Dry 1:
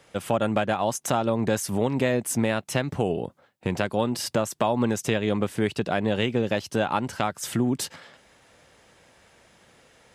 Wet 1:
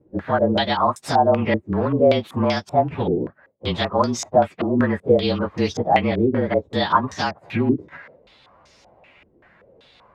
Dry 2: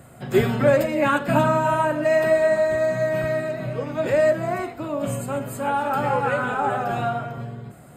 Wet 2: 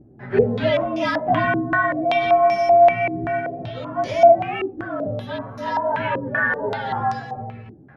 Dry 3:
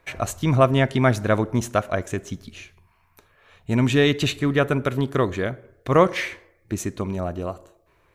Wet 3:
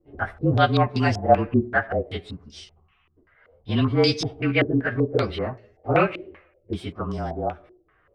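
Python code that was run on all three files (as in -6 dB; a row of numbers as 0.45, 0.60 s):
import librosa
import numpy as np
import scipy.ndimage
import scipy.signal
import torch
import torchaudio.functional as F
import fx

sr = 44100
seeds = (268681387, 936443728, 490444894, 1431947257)

y = fx.partial_stretch(x, sr, pct=110)
y = fx.filter_held_lowpass(y, sr, hz=5.2, low_hz=340.0, high_hz=5600.0)
y = librosa.util.normalize(y) * 10.0 ** (-3 / 20.0)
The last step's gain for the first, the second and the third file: +4.5, -0.5, -1.0 dB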